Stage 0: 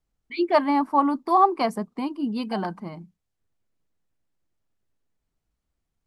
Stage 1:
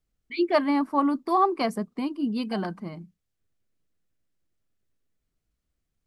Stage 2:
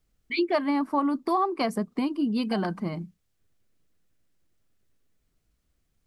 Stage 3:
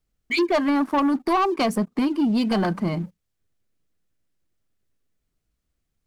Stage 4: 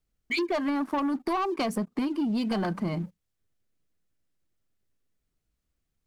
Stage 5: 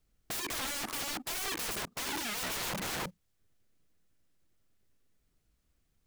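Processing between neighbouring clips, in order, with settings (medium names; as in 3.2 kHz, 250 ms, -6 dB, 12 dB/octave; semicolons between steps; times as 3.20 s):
peaking EQ 880 Hz -7.5 dB 0.63 oct
compression 3:1, threshold -31 dBFS, peak gain reduction 11.5 dB; trim +6.5 dB
waveshaping leveller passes 2
compression, threshold -22 dBFS, peak gain reduction 5 dB; trim -3 dB
integer overflow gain 36 dB; trim +5 dB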